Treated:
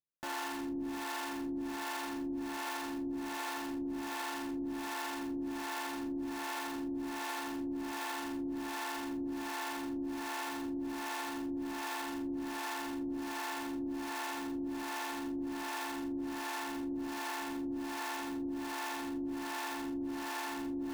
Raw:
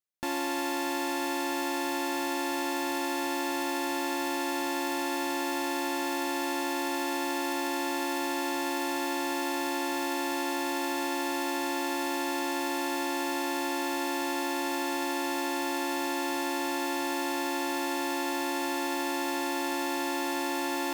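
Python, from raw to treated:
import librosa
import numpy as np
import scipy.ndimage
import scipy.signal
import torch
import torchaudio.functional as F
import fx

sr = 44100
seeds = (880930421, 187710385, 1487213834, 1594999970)

p1 = scipy.signal.sosfilt(scipy.signal.butter(2, 1700.0, 'lowpass', fs=sr, output='sos'), x)
p2 = fx.room_shoebox(p1, sr, seeds[0], volume_m3=710.0, walls='mixed', distance_m=0.54)
p3 = (np.mod(10.0 ** (30.0 / 20.0) * p2 + 1.0, 2.0) - 1.0) / 10.0 ** (30.0 / 20.0)
p4 = p2 + F.gain(torch.from_numpy(p3), -4.0).numpy()
p5 = fx.harmonic_tremolo(p4, sr, hz=1.3, depth_pct=100, crossover_hz=440.0)
y = F.gain(torch.from_numpy(p5), -3.0).numpy()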